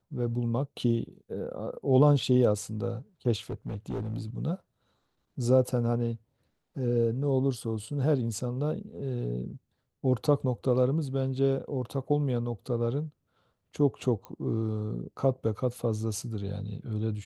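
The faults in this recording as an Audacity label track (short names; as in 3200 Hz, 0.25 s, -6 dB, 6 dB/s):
3.500000	4.210000	clipped -28.5 dBFS
14.250000	14.250000	pop -26 dBFS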